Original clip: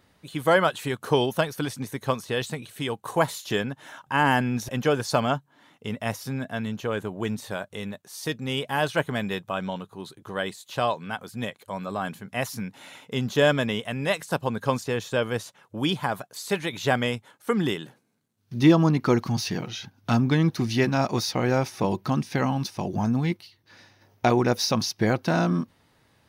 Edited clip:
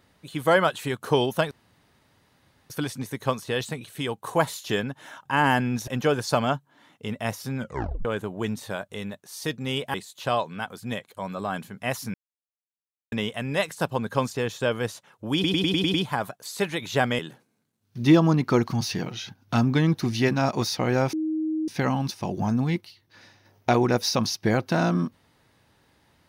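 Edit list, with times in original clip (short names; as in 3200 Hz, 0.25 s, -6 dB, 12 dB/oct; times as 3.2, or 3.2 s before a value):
1.51 insert room tone 1.19 s
6.39 tape stop 0.47 s
8.75–10.45 cut
12.65–13.63 mute
15.85 stutter 0.10 s, 7 plays
17.1–17.75 cut
21.69–22.24 bleep 314 Hz -23.5 dBFS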